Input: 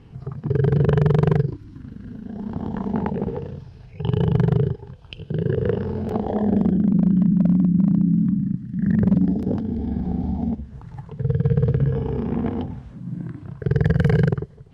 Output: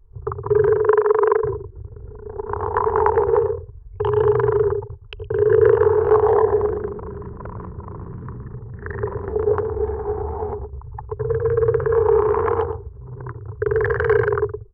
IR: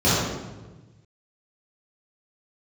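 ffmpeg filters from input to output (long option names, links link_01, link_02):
-filter_complex "[0:a]alimiter=limit=-18.5dB:level=0:latency=1:release=11,asettb=1/sr,asplit=3[link_01][link_02][link_03];[link_01]atrim=end=0.684[link_04];[link_02]atrim=start=0.68:end=1.43,asetpts=PTS-STARTPTS,afade=type=in:duration=0.004:curve=qsin,afade=type=out:start_time=0.746:duration=0.004:curve=qsin,acrossover=split=300 2700:gain=0.0794 1 0.2[link_05][link_06][link_07];[link_05][link_06][link_07]amix=inputs=3:normalize=0[link_08];[link_03]atrim=start=1.426[link_09];[link_04][link_08]acrossfade=duration=0.004:curve1=hsin:curve2=qsin[link_10];[link_10][link_09]acrossfade=duration=0.004:curve1=qsin:curve2=hsin,bandreject=frequency=50:width_type=h:width=6,bandreject=frequency=100:width_type=h:width=6,bandreject=frequency=150:width_type=h:width=6,bandreject=frequency=200:width_type=h:width=6,bandreject=frequency=250:width_type=h:width=6,bandreject=frequency=300:width_type=h:width=6,bandreject=frequency=350:width_type=h:width=6,bandreject=frequency=400:width_type=h:width=6,aecho=1:1:116|232|348:0.422|0.105|0.0264,anlmdn=15.8,firequalizer=gain_entry='entry(110,0);entry(160,-28);entry(280,-25);entry(410,11);entry(600,-9);entry(1000,14);entry(2400,-3);entry(3400,-8)':delay=0.05:min_phase=1,acrossover=split=140[link_11][link_12];[link_11]acompressor=threshold=-39dB:ratio=8[link_13];[link_13][link_12]amix=inputs=2:normalize=0,volume=9dB"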